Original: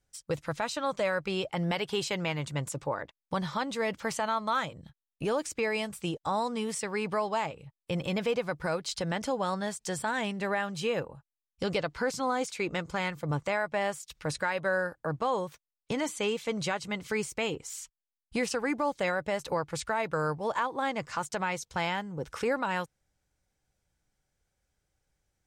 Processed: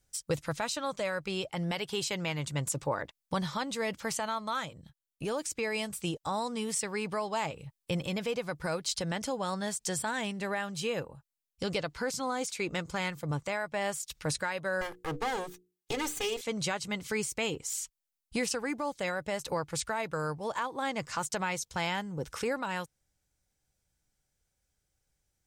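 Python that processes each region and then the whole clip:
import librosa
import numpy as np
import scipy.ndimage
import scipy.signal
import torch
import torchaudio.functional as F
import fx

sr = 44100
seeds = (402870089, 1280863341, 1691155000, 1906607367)

y = fx.chain(x, sr, fx.lower_of_two(delay_ms=2.4),
    fx.hum_notches(base_hz=60, count=8), at=(14.81, 16.41))
y = fx.low_shelf(y, sr, hz=320.0, db=3.5)
y = fx.rider(y, sr, range_db=10, speed_s=0.5)
y = fx.high_shelf(y, sr, hz=3700.0, db=9.5)
y = F.gain(torch.from_numpy(y), -4.0).numpy()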